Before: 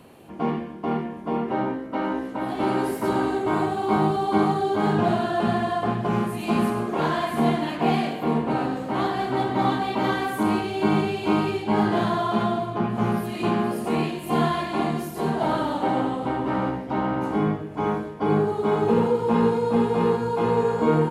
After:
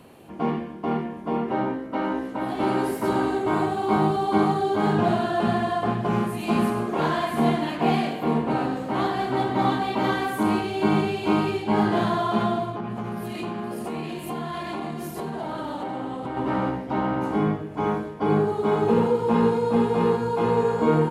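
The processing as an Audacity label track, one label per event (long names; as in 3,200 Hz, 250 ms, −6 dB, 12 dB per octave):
12.710000	16.370000	downward compressor, threshold −27 dBFS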